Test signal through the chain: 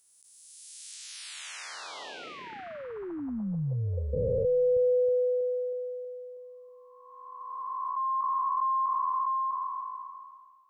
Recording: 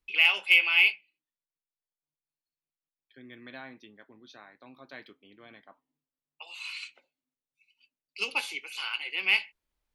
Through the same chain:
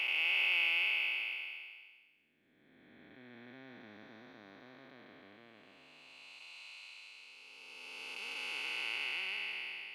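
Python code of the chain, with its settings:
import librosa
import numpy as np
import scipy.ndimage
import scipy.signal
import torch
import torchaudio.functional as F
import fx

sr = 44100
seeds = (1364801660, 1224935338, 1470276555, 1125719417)

y = fx.spec_blur(x, sr, span_ms=1110.0)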